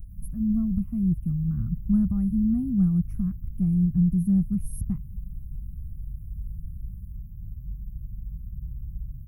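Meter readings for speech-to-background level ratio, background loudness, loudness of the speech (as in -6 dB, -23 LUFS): 14.5 dB, -40.0 LUFS, -25.5 LUFS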